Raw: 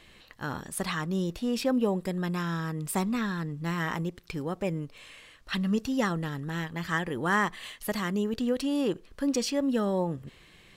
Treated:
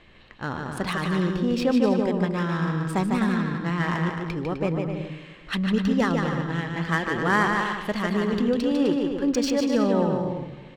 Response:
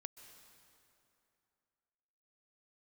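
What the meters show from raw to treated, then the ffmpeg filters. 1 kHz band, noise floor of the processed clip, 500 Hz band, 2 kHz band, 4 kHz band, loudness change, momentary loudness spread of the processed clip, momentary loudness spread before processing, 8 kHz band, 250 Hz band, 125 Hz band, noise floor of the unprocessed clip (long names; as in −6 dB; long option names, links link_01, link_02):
+6.0 dB, −46 dBFS, +6.0 dB, +5.5 dB, +3.5 dB, +5.5 dB, 9 LU, 10 LU, −1.5 dB, +6.0 dB, +6.0 dB, −56 dBFS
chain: -filter_complex "[0:a]aecho=1:1:150|255|328.5|380|416:0.631|0.398|0.251|0.158|0.1,asplit=2[link_01][link_02];[1:a]atrim=start_sample=2205[link_03];[link_02][link_03]afir=irnorm=-1:irlink=0,volume=0.5dB[link_04];[link_01][link_04]amix=inputs=2:normalize=0,adynamicsmooth=sensitivity=3:basefreq=3100"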